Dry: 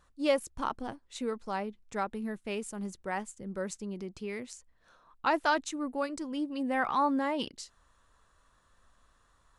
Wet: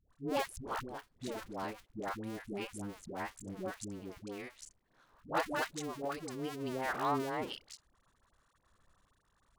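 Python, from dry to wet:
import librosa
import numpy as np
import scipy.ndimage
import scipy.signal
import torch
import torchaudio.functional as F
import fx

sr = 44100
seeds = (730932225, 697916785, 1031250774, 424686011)

y = fx.cycle_switch(x, sr, every=2, mode='muted')
y = fx.dispersion(y, sr, late='highs', ms=106.0, hz=540.0)
y = fx.band_squash(y, sr, depth_pct=40, at=(1.27, 3.57))
y = y * 10.0 ** (-3.0 / 20.0)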